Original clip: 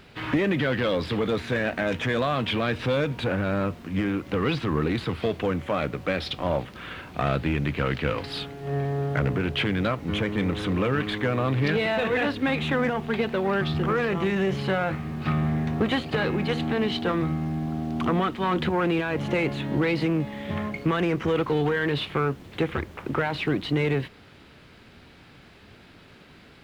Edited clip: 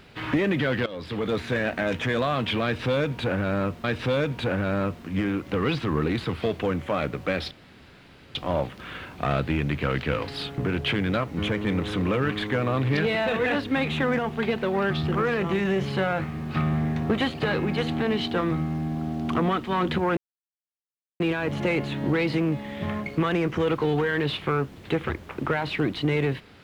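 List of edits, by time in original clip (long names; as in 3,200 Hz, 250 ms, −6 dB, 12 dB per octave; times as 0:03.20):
0:00.86–0:01.36: fade in, from −16.5 dB
0:02.64–0:03.84: repeat, 2 plays
0:06.31: splice in room tone 0.84 s
0:08.54–0:09.29: remove
0:18.88: splice in silence 1.03 s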